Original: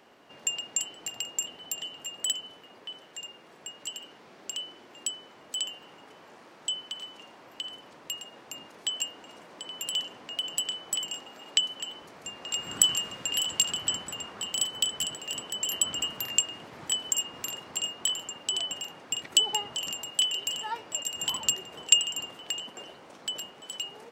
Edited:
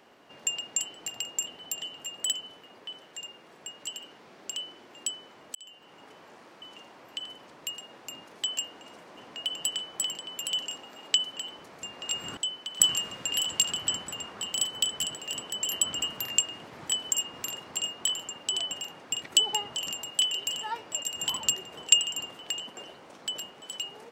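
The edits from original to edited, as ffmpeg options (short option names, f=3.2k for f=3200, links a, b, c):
-filter_complex "[0:a]asplit=8[a][b][c][d][e][f][g][h];[a]atrim=end=5.55,asetpts=PTS-STARTPTS,afade=t=out:st=5.546:d=0.004:c=hsin[i];[b]atrim=start=5.55:end=6.622,asetpts=PTS-STARTPTS,afade=t=in:d=0.49[j];[c]atrim=start=7.048:end=9.602[k];[d]atrim=start=10.098:end=11.112[l];[e]atrim=start=9.598:end=10.102[m];[f]atrim=start=11.108:end=12.802[n];[g]atrim=start=6.618:end=7.052[o];[h]atrim=start=12.798[p];[i][j]concat=n=2:v=0:a=1[q];[q][k]acrossfade=d=0.004:c1=hsin:c2=hsin[r];[r][l]acrossfade=d=0.004:c1=hsin:c2=hsin[s];[s][m]acrossfade=d=0.004:c1=hsin:c2=hsin[t];[t][n]acrossfade=d=0.004:c1=hsin:c2=hsin[u];[u][o]acrossfade=d=0.004:c1=hsin:c2=hsin[v];[v][p]acrossfade=d=0.004:c1=hsin:c2=hsin"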